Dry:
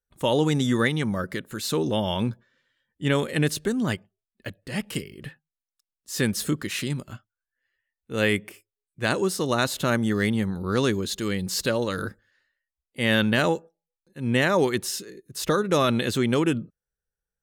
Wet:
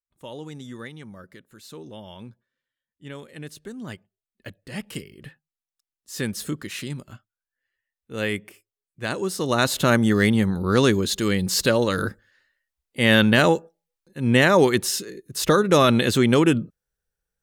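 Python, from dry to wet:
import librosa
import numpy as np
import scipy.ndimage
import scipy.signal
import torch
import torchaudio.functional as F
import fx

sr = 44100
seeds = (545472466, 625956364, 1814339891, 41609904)

y = fx.gain(x, sr, db=fx.line((3.38, -15.5), (4.48, -3.5), (9.16, -3.5), (9.74, 5.0)))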